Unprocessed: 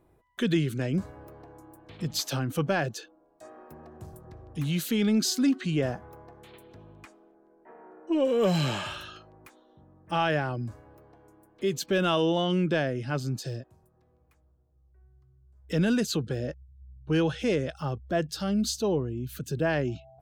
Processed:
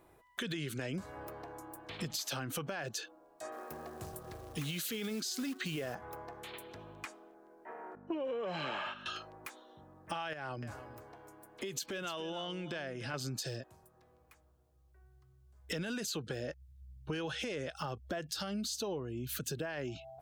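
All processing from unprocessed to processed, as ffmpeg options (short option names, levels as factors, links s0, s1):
-filter_complex "[0:a]asettb=1/sr,asplit=3[s0][s1][s2];[s0]atrim=end=3.524[s3];[s1]atrim=start=3.52:end=5.95,asetpts=PTS-STARTPTS,afade=t=in:d=0.004:c=qsin,afade=t=out:st=2.426:d=0.004:c=qsin,equalizer=f=440:w=7.1:g=4.5,bandreject=f=910:w=13,acrusher=bits=6:mode=log:mix=0:aa=0.000001[s4];[s2]atrim=start=5.946[s5];[s3][s4]acrossfade=d=0.004:c1=hsin:c2=qsin[s6];[s6][s5]acrossfade=d=0.004:c1=qsin:c2=hsin,asettb=1/sr,asplit=3[s7][s8][s9];[s7]atrim=end=7.954[s10];[s8]atrim=start=7.95:end=9.06,asetpts=PTS-STARTPTS,afade=t=in:d=0.004:c=qsin,afade=t=out:st=1.106:d=0.004:c=qsin,agate=range=0.251:threshold=0.0141:ratio=16:release=100:detection=peak,aeval=exprs='val(0)+0.0112*(sin(2*PI*50*n/s)+sin(2*PI*2*50*n/s)/2+sin(2*PI*3*50*n/s)/3+sin(2*PI*4*50*n/s)/4+sin(2*PI*5*50*n/s)/5)':c=same,highpass=250,lowpass=2200[s11];[s9]atrim=start=9.056[s12];[s10][s11]acrossfade=d=0.004:c1=hsin:c2=qsin[s13];[s13][s12]acrossfade=d=0.004:c1=qsin:c2=hsin,asettb=1/sr,asplit=3[s14][s15][s16];[s14]atrim=end=10.334[s17];[s15]atrim=start=10.33:end=13.14,asetpts=PTS-STARTPTS,afade=t=in:d=0.004:c=qsin,afade=t=out:st=2.806:d=0.004:c=qsin,acompressor=threshold=0.0178:ratio=12:attack=3.2:release=140:knee=1:detection=peak,aecho=1:1:294:0.2,atrim=end_sample=123921[s18];[s16]atrim=start=13.136[s19];[s17][s18]acrossfade=d=0.004:c1=hsin:c2=qsin[s20];[s20][s19]acrossfade=d=0.004:c1=qsin:c2=hsin,lowshelf=f=470:g=-12,alimiter=level_in=1.58:limit=0.0631:level=0:latency=1:release=58,volume=0.631,acompressor=threshold=0.00708:ratio=6,volume=2.37"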